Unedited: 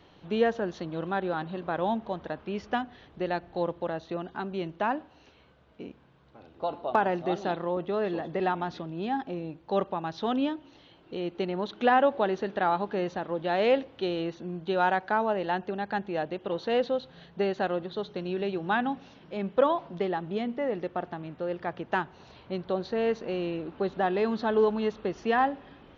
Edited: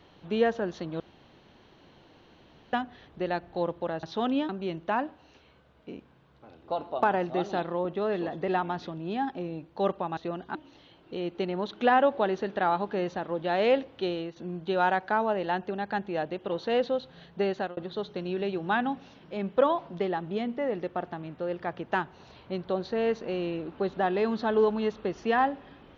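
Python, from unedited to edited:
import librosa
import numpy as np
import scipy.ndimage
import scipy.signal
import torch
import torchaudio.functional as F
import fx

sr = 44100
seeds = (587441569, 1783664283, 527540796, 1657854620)

y = fx.edit(x, sr, fx.room_tone_fill(start_s=1.0, length_s=1.73),
    fx.swap(start_s=4.03, length_s=0.38, other_s=10.09, other_length_s=0.46),
    fx.fade_out_to(start_s=14.08, length_s=0.28, floor_db=-9.0),
    fx.fade_out_span(start_s=17.49, length_s=0.28, curve='qsin'), tone=tone)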